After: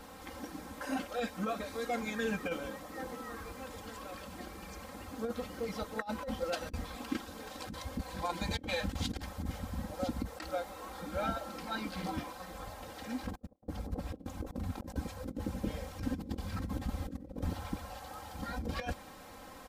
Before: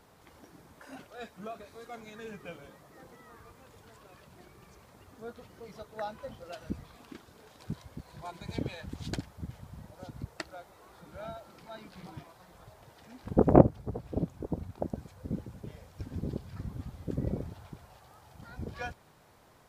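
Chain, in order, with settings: comb 3.8 ms, depth 96%; negative-ratio compressor -39 dBFS, ratio -0.5; gain +1 dB

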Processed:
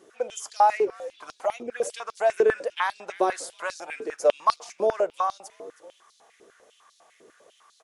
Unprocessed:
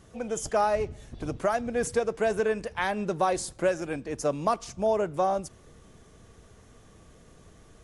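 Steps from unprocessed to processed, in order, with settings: 1.37–1.82 envelope flanger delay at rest 5.8 ms, full sweep at -25 dBFS; frequency-shifting echo 0.319 s, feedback 31%, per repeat -110 Hz, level -17.5 dB; stepped high-pass 10 Hz 380–4200 Hz; gain -2 dB

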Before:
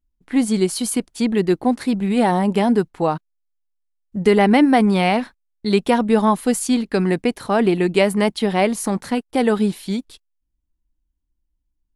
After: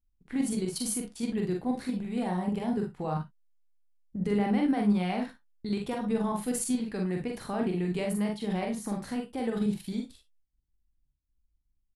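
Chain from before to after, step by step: low shelf 200 Hz +7.5 dB; level quantiser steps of 13 dB; limiter -15.5 dBFS, peak gain reduction 12.5 dB; on a send: early reflections 44 ms -3.5 dB, 58 ms -9 dB, 73 ms -15.5 dB; on the sum: non-linear reverb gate 80 ms flat, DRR 10.5 dB; gain -7 dB

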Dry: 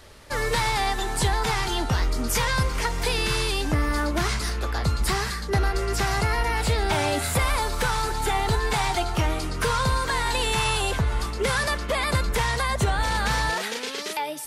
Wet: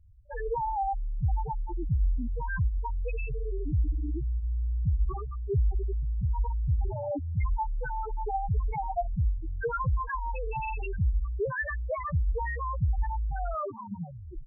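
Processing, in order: tape stop at the end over 1.26 s; loudest bins only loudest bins 2

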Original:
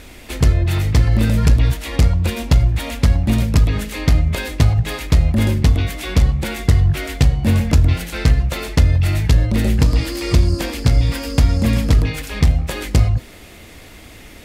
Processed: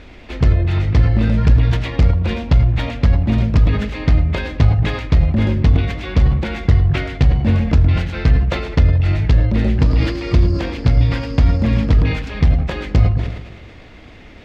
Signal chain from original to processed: air absorption 200 m; darkening echo 0.111 s, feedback 64%, low-pass 1600 Hz, level -14 dB; sustainer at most 63 dB/s

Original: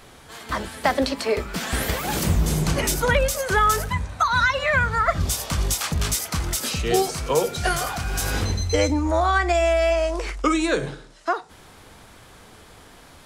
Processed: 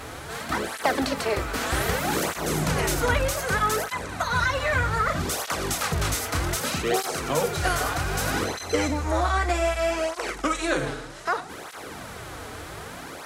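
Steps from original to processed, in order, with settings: per-bin compression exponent 0.6; tape flanging out of phase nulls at 0.64 Hz, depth 5.9 ms; gain -4 dB

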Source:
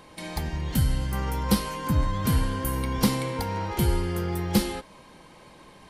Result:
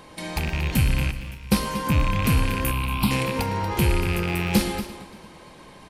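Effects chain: rattling part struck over -29 dBFS, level -20 dBFS; in parallel at -5.5 dB: soft clip -21.5 dBFS, distortion -11 dB; 1.11–1.52 on the sum: passive tone stack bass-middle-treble 6-0-2; 2.71–3.11 fixed phaser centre 1800 Hz, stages 6; echo 0.235 s -13.5 dB; warbling echo 0.114 s, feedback 68%, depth 186 cents, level -18 dB

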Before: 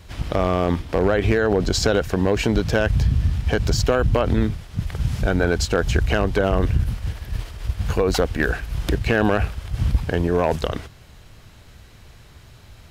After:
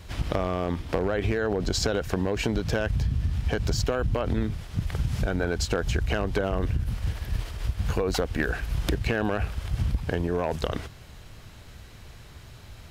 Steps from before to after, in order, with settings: compressor, threshold -22 dBFS, peak gain reduction 10 dB

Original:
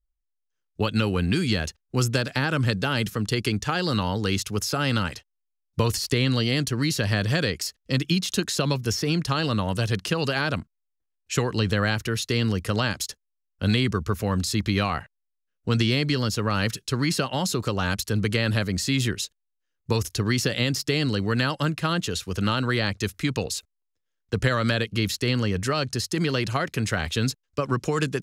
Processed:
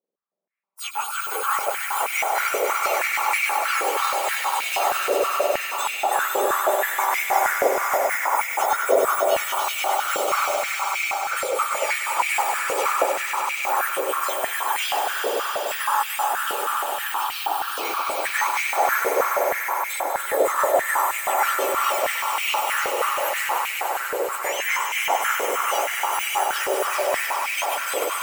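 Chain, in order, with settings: spectrum mirrored in octaves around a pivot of 1900 Hz; 16.28–17.72 fixed phaser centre 2100 Hz, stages 6; swelling echo 98 ms, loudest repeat 5, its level -6.5 dB; reverb RT60 2.5 s, pre-delay 90 ms, DRR 7.5 dB; stepped high-pass 6.3 Hz 490–2300 Hz; gain -1.5 dB

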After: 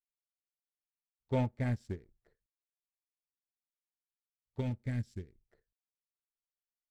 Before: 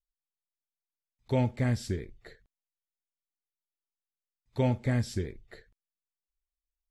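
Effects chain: Wiener smoothing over 15 samples; sample leveller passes 1; 4.6–5.41 bell 800 Hz -10 dB 1.7 oct; upward expander 2.5:1, over -34 dBFS; gain -5 dB

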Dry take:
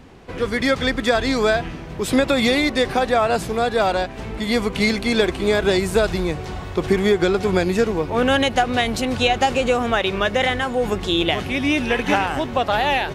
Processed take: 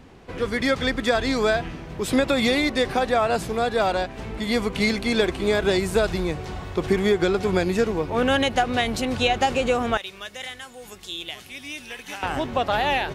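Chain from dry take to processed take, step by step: 9.97–12.23 pre-emphasis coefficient 0.9; gain -3 dB

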